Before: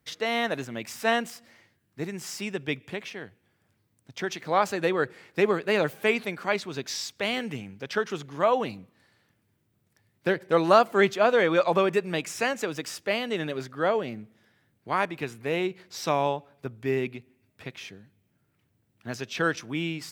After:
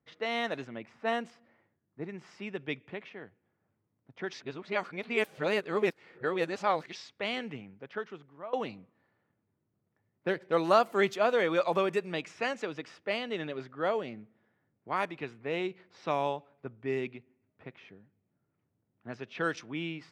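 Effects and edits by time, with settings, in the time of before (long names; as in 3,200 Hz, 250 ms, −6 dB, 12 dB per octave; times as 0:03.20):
0:00.78–0:02.09: high-shelf EQ 2,000 Hz −7 dB
0:04.33–0:06.95: reverse
0:07.54–0:08.53: fade out, to −17.5 dB
whole clip: low-shelf EQ 82 Hz −11.5 dB; low-pass that shuts in the quiet parts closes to 1,300 Hz, open at −19.5 dBFS; notch filter 1,600 Hz, Q 23; level −5 dB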